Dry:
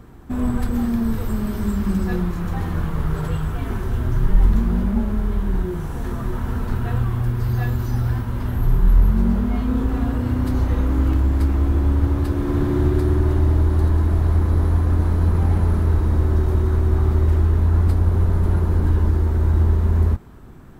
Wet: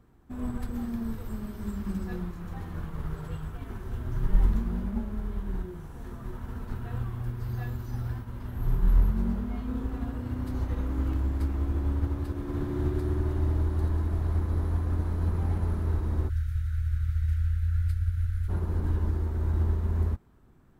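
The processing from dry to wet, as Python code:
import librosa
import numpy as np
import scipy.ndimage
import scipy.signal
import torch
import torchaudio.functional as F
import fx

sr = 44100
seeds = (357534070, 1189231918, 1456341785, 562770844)

y = fx.cheby1_bandstop(x, sr, low_hz=120.0, high_hz=1400.0, order=5, at=(16.28, 18.48), fade=0.02)
y = fx.upward_expand(y, sr, threshold_db=-29.0, expansion=1.5)
y = F.gain(torch.from_numpy(y), -6.0).numpy()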